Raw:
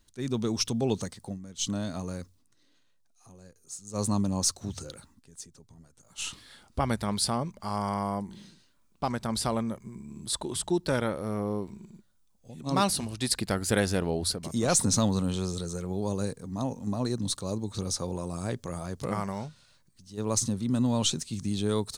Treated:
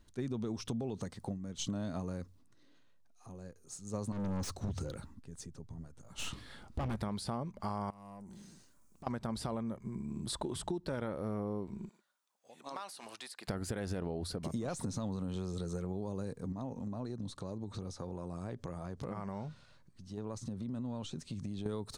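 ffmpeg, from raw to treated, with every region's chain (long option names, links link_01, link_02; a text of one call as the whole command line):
ffmpeg -i in.wav -filter_complex "[0:a]asettb=1/sr,asplit=3[link_01][link_02][link_03];[link_01]atrim=end=4.124[link_04];[link_02]atrim=start=4.12:end=6.96,asetpts=PTS-STARTPTS,afade=type=in:duration=0.004:curve=qsin,afade=type=out:start_time=2.836:duration=0.004:curve=qsin,lowshelf=frequency=160:gain=6.5,volume=30.5dB,asoftclip=hard,volume=-30.5dB[link_05];[link_03]atrim=start=6.956[link_06];[link_04][link_05]acrossfade=duration=0.004:curve1=hsin:curve2=qsin[link_07];[link_07][link_06]acrossfade=duration=0.004:curve1=qsin:curve2=hsin,asettb=1/sr,asplit=3[link_08][link_09][link_10];[link_08]atrim=end=7.904[link_11];[link_09]atrim=start=7.9:end=9.07,asetpts=PTS-STARTPTS,afade=type=in:duration=0.004:curve=qsin,afade=type=out:start_time=1.166:duration=0.004:curve=qsin,highshelf=frequency=5000:width_type=q:width=1.5:gain=11.5,acompressor=threshold=-48dB:ratio=5:attack=3.2:release=140:knee=1:detection=peak,aeval=exprs='(tanh(224*val(0)+0.25)-tanh(0.25))/224':channel_layout=same[link_12];[link_10]atrim=start=9.066[link_13];[link_11][link_12]acrossfade=duration=0.004:curve1=hsin:curve2=qsin[link_14];[link_14][link_13]acrossfade=duration=0.004:curve1=qsin:curve2=hsin,asettb=1/sr,asplit=3[link_15][link_16][link_17];[link_15]atrim=end=11.894[link_18];[link_16]atrim=start=11.89:end=13.48,asetpts=PTS-STARTPTS,afade=type=in:duration=0.004:curve=qsin,afade=type=out:start_time=1.586:duration=0.004:curve=qsin,highpass=840,acompressor=threshold=-40dB:ratio=8:attack=3.2:release=140:knee=1:detection=peak[link_19];[link_17]atrim=start=13.476[link_20];[link_18][link_19]acrossfade=duration=0.004:curve1=hsin:curve2=qsin[link_21];[link_21][link_20]acrossfade=duration=0.004:curve1=qsin:curve2=hsin,asettb=1/sr,asplit=3[link_22][link_23][link_24];[link_22]atrim=end=16.524[link_25];[link_23]atrim=start=16.52:end=21.66,asetpts=PTS-STARTPTS,afade=type=in:duration=0.004:curve=qsin,afade=type=out:start_time=5.136:duration=0.004:curve=qsin,acompressor=threshold=-41dB:ratio=4:attack=3.2:release=140:knee=1:detection=peak,highshelf=frequency=11000:gain=-10[link_26];[link_24]atrim=start=21.656[link_27];[link_25][link_26]acrossfade=duration=0.004:curve1=hsin:curve2=qsin[link_28];[link_28][link_27]acrossfade=duration=0.004:curve1=qsin:curve2=hsin,alimiter=limit=-21dB:level=0:latency=1:release=70,highshelf=frequency=2800:gain=-11.5,acompressor=threshold=-38dB:ratio=6,volume=3.5dB" out.wav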